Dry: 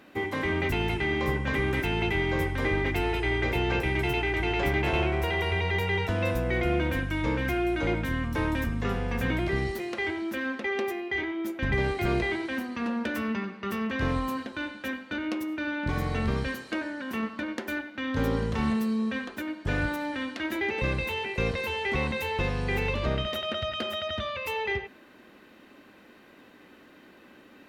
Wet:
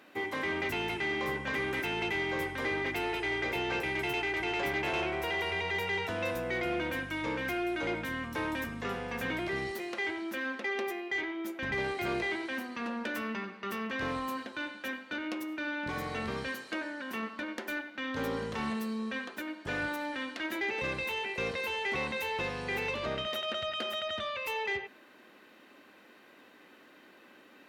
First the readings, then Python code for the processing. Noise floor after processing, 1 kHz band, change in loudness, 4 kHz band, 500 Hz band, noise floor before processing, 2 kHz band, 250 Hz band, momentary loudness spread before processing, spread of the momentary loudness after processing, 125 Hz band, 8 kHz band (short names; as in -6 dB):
-58 dBFS, -3.0 dB, -5.0 dB, -2.5 dB, -5.0 dB, -54 dBFS, -2.5 dB, -7.5 dB, 6 LU, 6 LU, -14.0 dB, -1.5 dB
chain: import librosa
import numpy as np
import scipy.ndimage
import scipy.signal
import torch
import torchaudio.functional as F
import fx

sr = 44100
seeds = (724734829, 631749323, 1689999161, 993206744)

y = fx.highpass(x, sr, hz=400.0, slope=6)
y = 10.0 ** (-22.5 / 20.0) * np.tanh(y / 10.0 ** (-22.5 / 20.0))
y = y * librosa.db_to_amplitude(-1.5)